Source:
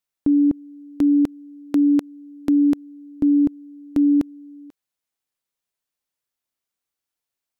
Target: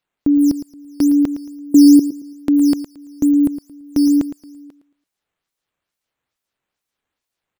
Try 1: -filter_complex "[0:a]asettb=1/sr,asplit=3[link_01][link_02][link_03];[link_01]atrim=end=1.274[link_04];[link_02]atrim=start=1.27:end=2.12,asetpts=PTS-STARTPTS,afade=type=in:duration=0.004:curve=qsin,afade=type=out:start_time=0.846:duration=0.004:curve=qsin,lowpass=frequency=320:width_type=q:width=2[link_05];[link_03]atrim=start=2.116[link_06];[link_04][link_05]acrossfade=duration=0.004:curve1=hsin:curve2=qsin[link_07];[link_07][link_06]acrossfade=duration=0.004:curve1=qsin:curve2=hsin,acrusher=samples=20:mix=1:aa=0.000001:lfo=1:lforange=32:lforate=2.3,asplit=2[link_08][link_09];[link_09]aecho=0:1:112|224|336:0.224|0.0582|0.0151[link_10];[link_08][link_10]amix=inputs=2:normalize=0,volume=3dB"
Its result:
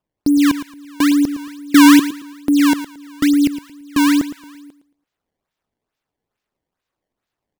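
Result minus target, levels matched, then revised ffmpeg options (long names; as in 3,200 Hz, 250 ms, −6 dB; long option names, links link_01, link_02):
sample-and-hold swept by an LFO: distortion +13 dB
-filter_complex "[0:a]asettb=1/sr,asplit=3[link_01][link_02][link_03];[link_01]atrim=end=1.274[link_04];[link_02]atrim=start=1.27:end=2.12,asetpts=PTS-STARTPTS,afade=type=in:duration=0.004:curve=qsin,afade=type=out:start_time=0.846:duration=0.004:curve=qsin,lowpass=frequency=320:width_type=q:width=2[link_05];[link_03]atrim=start=2.116[link_06];[link_04][link_05]acrossfade=duration=0.004:curve1=hsin:curve2=qsin[link_07];[link_07][link_06]acrossfade=duration=0.004:curve1=qsin:curve2=hsin,acrusher=samples=5:mix=1:aa=0.000001:lfo=1:lforange=8:lforate=2.3,asplit=2[link_08][link_09];[link_09]aecho=0:1:112|224|336:0.224|0.0582|0.0151[link_10];[link_08][link_10]amix=inputs=2:normalize=0,volume=3dB"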